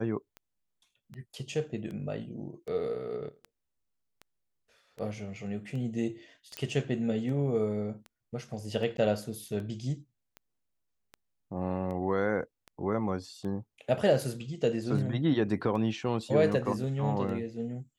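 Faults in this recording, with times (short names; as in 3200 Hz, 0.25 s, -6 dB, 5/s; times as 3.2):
tick 78 rpm -30 dBFS
6.57 pop -19 dBFS
8.97–8.98 gap 12 ms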